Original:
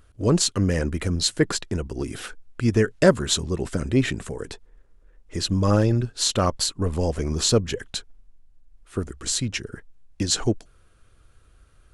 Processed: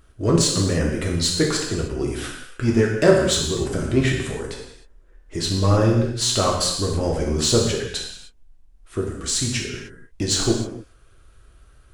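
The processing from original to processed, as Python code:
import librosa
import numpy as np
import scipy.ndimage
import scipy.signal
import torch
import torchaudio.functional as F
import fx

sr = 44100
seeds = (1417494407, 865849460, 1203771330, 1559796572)

p1 = np.clip(x, -10.0 ** (-20.5 / 20.0), 10.0 ** (-20.5 / 20.0))
p2 = x + (p1 * librosa.db_to_amplitude(-7.0))
p3 = fx.rev_gated(p2, sr, seeds[0], gate_ms=330, shape='falling', drr_db=-1.5)
y = p3 * librosa.db_to_amplitude(-3.0)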